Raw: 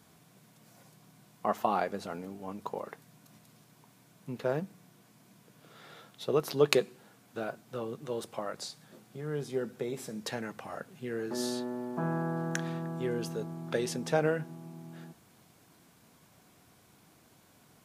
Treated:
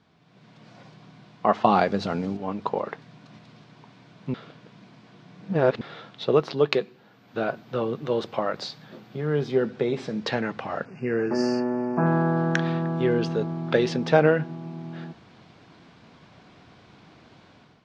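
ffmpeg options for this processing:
-filter_complex "[0:a]asettb=1/sr,asplit=3[a][b][c];[a]atrim=end=1.644[d];[b]atrim=start=1.64:end=2.37,asetpts=PTS-STARTPTS,afade=t=in:d=0.004:c=qsin,afade=t=out:st=0.726:d=0.004:c=qsin,bass=f=250:g=7,treble=f=4k:g=10[e];[c]atrim=start=2.366[f];[d][e]acrossfade=d=0.004:c1=hsin:c2=qsin[g];[g][f]acrossfade=d=0.004:c1=qsin:c2=hsin,asettb=1/sr,asplit=3[h][i][j];[h]atrim=end=6.344[k];[i]atrim=start=6.34:end=9.64,asetpts=PTS-STARTPTS,afade=t=in:d=0.004:c=qsin,afade=t=out:st=3.296:d=0.004:c=qsin,aeval=exprs='val(0)+0.00631*sin(2*PI*12000*n/s)':c=same[l];[j]atrim=start=9.636[m];[k][l]acrossfade=d=0.004:c1=hsin:c2=qsin[n];[n][m]acrossfade=d=0.004:c1=qsin:c2=hsin,asettb=1/sr,asplit=3[o][p][q];[o]atrim=end=10.854[r];[p]atrim=start=10.85:end=12.06,asetpts=PTS-STARTPTS,afade=t=in:d=0.004:c=qsin,afade=t=out:st=1.206:d=0.004:c=qsin,asuperstop=centerf=3600:order=20:qfactor=2.1[s];[q]atrim=start=12.056[t];[r][s]acrossfade=d=0.004:c1=hsin:c2=qsin[u];[u][t]acrossfade=d=0.004:c1=qsin:c2=hsin,asplit=3[v][w][x];[v]atrim=end=4.342[y];[w]atrim=start=4.338:end=5.812,asetpts=PTS-STARTPTS,areverse[z];[x]atrim=start=5.808[aa];[y][z]acrossfade=d=0.004:c1=hsin:c2=hsin[ab];[ab][aa]acrossfade=d=0.004:c1=hsin:c2=hsin,lowpass=f=4.5k:w=0.5412,lowpass=f=4.5k:w=1.3066,dynaudnorm=f=160:g=5:m=11.5dB,volume=-1dB"

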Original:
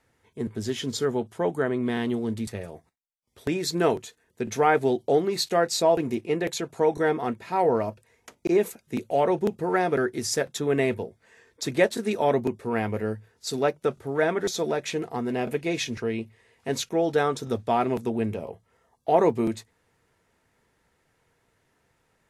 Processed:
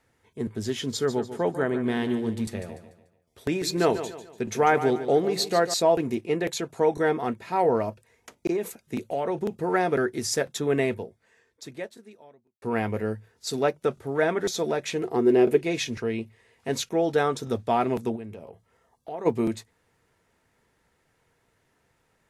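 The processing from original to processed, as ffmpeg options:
-filter_complex "[0:a]asettb=1/sr,asplit=3[a][b][c];[a]atrim=end=0.934[d];[b]atrim=start=0.93:end=5.74,asetpts=PTS-STARTPTS,afade=t=in:d=0.004:c=qsin,afade=t=out:st=4.806:d=0.004:c=qsin,aecho=1:1:146|292|438|584:0.266|0.101|0.0384|0.0146,atrim=end_sample=212121[e];[c]atrim=start=5.736[f];[d][e]acrossfade=d=0.004:c1=hsin:c2=qsin[g];[g][f]acrossfade=d=0.004:c1=qsin:c2=hsin,asettb=1/sr,asplit=3[h][i][j];[h]atrim=end=8.504[k];[i]atrim=start=8.5:end=9.53,asetpts=PTS-STARTPTS,afade=t=in:d=0.004:c=qsin,afade=t=out:st=1.026:d=0.004:c=qsin,acompressor=threshold=-23dB:ratio=6:attack=3.2:release=140:knee=1:detection=peak[l];[j]atrim=start=9.526[m];[k][l]acrossfade=d=0.004:c1=hsin:c2=qsin[n];[n][m]acrossfade=d=0.004:c1=qsin:c2=hsin,asettb=1/sr,asplit=3[o][p][q];[o]atrim=end=15.034[r];[p]atrim=start=15.03:end=15.63,asetpts=PTS-STARTPTS,afade=t=in:d=0.004:c=qsin,afade=t=out:st=0.596:d=0.004:c=qsin,equalizer=f=370:w=2.7:g=14.5[s];[q]atrim=start=15.626[t];[r][s]acrossfade=d=0.004:c1=hsin:c2=qsin[u];[u][t]acrossfade=d=0.004:c1=qsin:c2=hsin,asplit=3[v][w][x];[v]afade=t=out:st=18.15:d=0.02[y];[w]acompressor=threshold=-44dB:ratio=2:attack=3.2:release=140:knee=1:detection=peak,afade=t=in:st=18.15:d=0.02,afade=t=out:st=19.25:d=0.02[z];[x]afade=t=in:st=19.25:d=0.02[aa];[y][z][aa]amix=inputs=3:normalize=0,asplit=2[ab][ac];[ab]atrim=end=12.62,asetpts=PTS-STARTPTS,afade=t=out:st=10.74:d=1.88:c=qua[ad];[ac]atrim=start=12.62,asetpts=PTS-STARTPTS,afade=t=in:d=0.004:c=hsin[ae];[ad][ae]concat=n=2:v=0:a=1"

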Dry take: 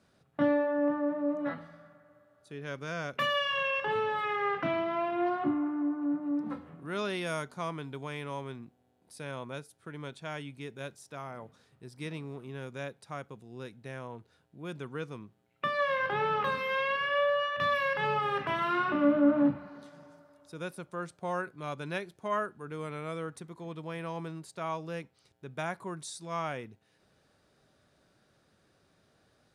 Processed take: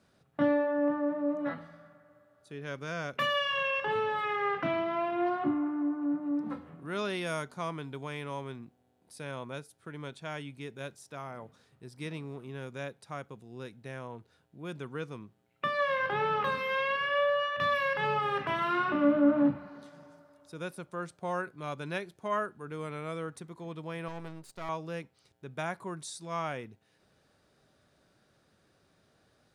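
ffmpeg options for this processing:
-filter_complex "[0:a]asettb=1/sr,asplit=3[a][b][c];[a]atrim=end=24.084[d];[b]atrim=start=24.08:end=24.69,asetpts=PTS-STARTPTS,afade=t=in:d=0.004:c=qsin,afade=t=out:st=0.606:d=0.004:c=qsin,aeval=exprs='if(lt(val(0),0),0.251*val(0),val(0))':c=same[e];[c]atrim=start=24.686[f];[d][e]acrossfade=d=0.004:c1=hsin:c2=qsin[g];[g][f]acrossfade=d=0.004:c1=qsin:c2=hsin"

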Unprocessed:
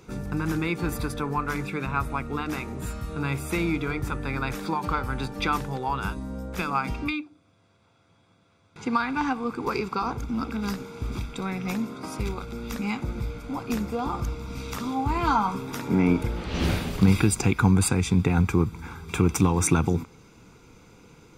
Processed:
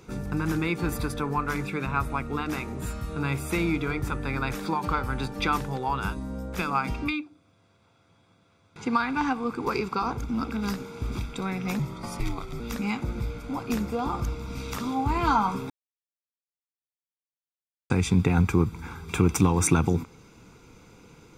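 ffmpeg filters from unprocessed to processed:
-filter_complex "[0:a]asettb=1/sr,asplit=3[a][b][c];[a]atrim=end=11.794[d];[b]atrim=start=11.79:end=12.6,asetpts=PTS-STARTPTS,afade=t=in:d=0.004:c=qsin,afade=t=out:st=0.806:d=0.004:c=qsin,afreqshift=-83[e];[c]atrim=start=12.596[f];[d][e]acrossfade=d=0.004:c1=hsin:c2=qsin[g];[g][f]acrossfade=d=0.004:c1=qsin:c2=hsin,asplit=3[h][i][j];[h]atrim=end=15.7,asetpts=PTS-STARTPTS,afade=t=out:st=15.696:d=0.004:c=hsin[k];[i]atrim=start=15.7:end=17.9,asetpts=PTS-STARTPTS,volume=0[l];[j]atrim=start=17.9,asetpts=PTS-STARTPTS,afade=t=in:d=0.004:c=hsin[m];[k][l][m]concat=n=3:v=0:a=1"

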